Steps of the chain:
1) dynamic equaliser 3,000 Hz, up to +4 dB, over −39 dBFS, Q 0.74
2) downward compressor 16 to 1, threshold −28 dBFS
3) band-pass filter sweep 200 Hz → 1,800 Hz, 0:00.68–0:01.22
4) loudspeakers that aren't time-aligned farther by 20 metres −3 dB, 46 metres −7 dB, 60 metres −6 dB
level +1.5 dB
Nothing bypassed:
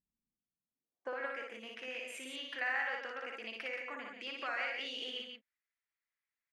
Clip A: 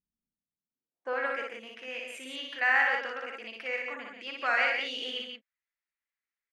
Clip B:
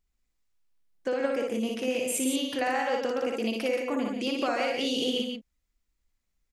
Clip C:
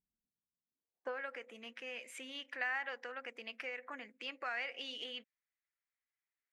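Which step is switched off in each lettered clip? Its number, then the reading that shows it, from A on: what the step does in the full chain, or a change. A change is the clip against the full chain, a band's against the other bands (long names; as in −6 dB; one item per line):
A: 2, average gain reduction 5.0 dB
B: 3, 2 kHz band −14.5 dB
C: 4, echo-to-direct ratio 0.0 dB to none audible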